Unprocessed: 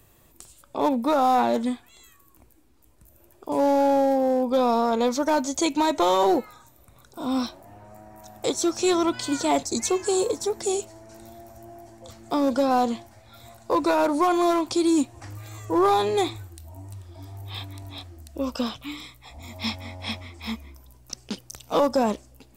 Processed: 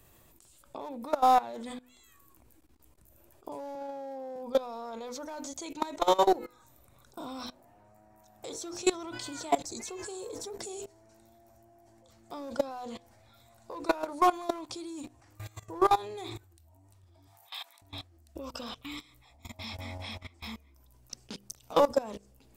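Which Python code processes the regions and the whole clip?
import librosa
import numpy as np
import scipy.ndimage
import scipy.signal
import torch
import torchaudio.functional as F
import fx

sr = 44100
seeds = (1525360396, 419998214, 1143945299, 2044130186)

y = fx.chain(x, sr, fx.highpass(hz=120.0, slope=24),
    fx.high_shelf(hz=7700.0, db=-7.0), at=(3.75, 4.36))
y = fx.chain(y, sr, fx.highpass(hz=700.0, slope=24),
    fx.high_shelf(hz=9200.0, db=6.5), at=(17.27, 17.82))
y = fx.hum_notches(y, sr, base_hz=50, count=10)
y = fx.dynamic_eq(y, sr, hz=250.0, q=2.7, threshold_db=-38.0, ratio=4.0, max_db=-6)
y = fx.level_steps(y, sr, step_db=20)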